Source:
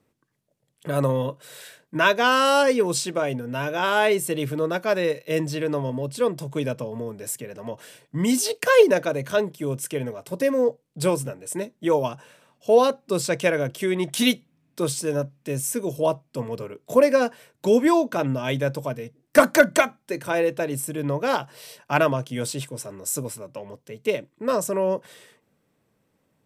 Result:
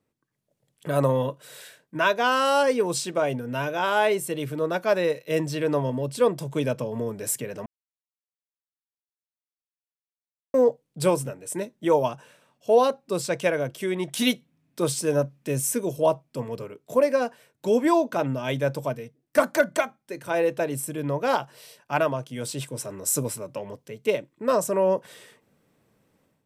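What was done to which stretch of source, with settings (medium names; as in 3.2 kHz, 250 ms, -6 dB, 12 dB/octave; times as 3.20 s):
7.66–10.54 s: mute
whole clip: dynamic bell 770 Hz, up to +4 dB, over -29 dBFS, Q 1.2; level rider; trim -8 dB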